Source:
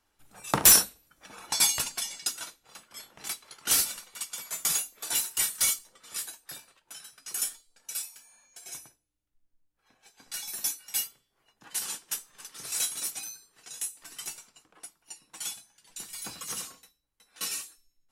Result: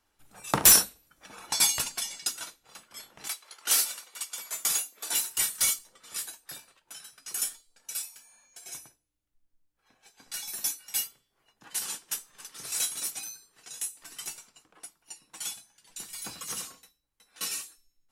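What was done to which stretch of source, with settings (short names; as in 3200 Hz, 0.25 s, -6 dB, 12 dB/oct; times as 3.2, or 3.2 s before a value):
3.27–5.24 HPF 560 Hz -> 170 Hz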